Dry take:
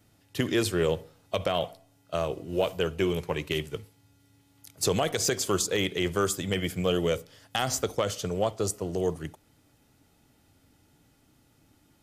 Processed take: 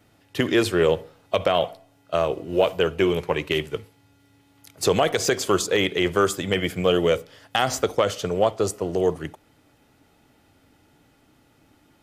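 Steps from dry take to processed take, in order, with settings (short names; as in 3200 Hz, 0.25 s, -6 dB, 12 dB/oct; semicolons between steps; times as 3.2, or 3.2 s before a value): tone controls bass -6 dB, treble -8 dB; gain +7.5 dB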